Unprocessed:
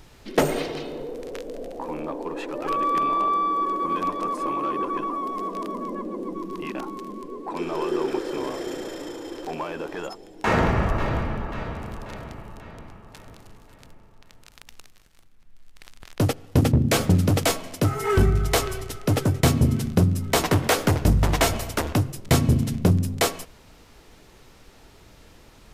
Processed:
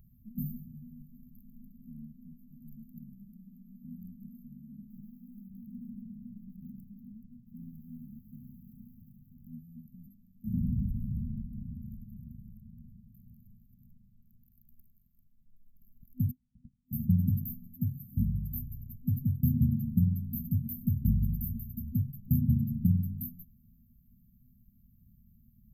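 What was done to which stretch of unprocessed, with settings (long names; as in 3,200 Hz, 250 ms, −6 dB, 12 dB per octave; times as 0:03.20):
0:04.90–0:09.52: slack as between gear wheels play −30 dBFS
0:16.31–0:16.93: voice inversion scrambler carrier 2,600 Hz
0:17.75–0:18.56: low-shelf EQ 64 Hz −8.5 dB
whole clip: brick-wall band-stop 250–12,000 Hz; low-shelf EQ 87 Hz −8 dB; level −3.5 dB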